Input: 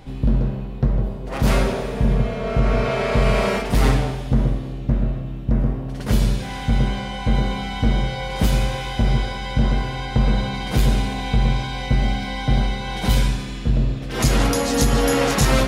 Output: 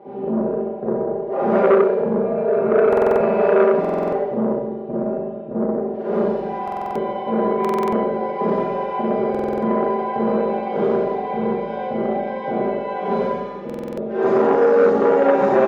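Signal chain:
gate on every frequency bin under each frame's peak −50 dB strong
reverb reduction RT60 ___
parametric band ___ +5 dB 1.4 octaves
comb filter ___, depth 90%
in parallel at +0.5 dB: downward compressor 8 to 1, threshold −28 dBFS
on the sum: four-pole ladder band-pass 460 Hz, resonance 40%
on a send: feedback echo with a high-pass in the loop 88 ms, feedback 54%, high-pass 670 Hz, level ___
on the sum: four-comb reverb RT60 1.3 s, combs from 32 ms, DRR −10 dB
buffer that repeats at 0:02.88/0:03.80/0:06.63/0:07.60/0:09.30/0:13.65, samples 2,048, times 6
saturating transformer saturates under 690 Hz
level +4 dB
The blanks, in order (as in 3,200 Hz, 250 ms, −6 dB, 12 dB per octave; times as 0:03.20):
1.8 s, 660 Hz, 5 ms, −7 dB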